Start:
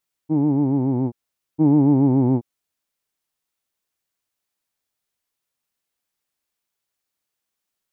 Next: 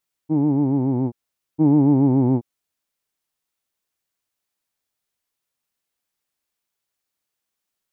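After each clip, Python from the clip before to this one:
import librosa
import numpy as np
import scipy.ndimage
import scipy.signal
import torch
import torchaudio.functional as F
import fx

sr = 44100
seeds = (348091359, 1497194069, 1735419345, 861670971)

y = x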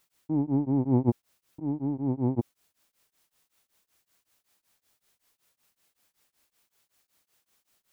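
y = fx.over_compress(x, sr, threshold_db=-27.0, ratio=-1.0)
y = y * np.abs(np.cos(np.pi * 5.3 * np.arange(len(y)) / sr))
y = F.gain(torch.from_numpy(y), 3.5).numpy()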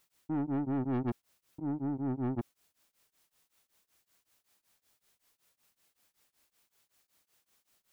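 y = 10.0 ** (-27.0 / 20.0) * np.tanh(x / 10.0 ** (-27.0 / 20.0))
y = F.gain(torch.from_numpy(y), -1.5).numpy()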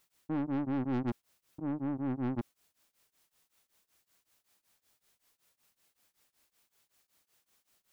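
y = fx.doppler_dist(x, sr, depth_ms=0.5)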